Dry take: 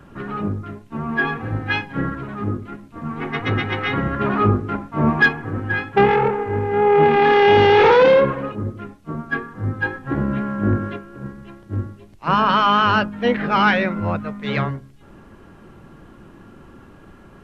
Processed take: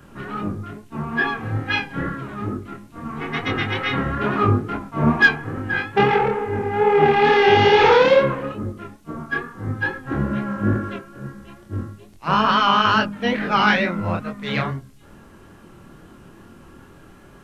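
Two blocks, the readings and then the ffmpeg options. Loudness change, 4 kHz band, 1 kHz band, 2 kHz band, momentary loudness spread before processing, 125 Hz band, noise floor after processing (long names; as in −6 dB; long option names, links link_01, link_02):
−1.0 dB, +2.0 dB, −1.0 dB, +0.5 dB, 18 LU, −1.5 dB, −47 dBFS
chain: -af "highshelf=frequency=4300:gain=10.5,flanger=delay=22.5:depth=5.8:speed=2.3,volume=1.5dB"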